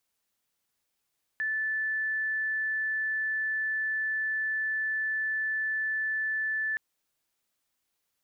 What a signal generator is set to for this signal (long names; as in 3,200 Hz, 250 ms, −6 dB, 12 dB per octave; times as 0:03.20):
tone sine 1,750 Hz −27 dBFS 5.37 s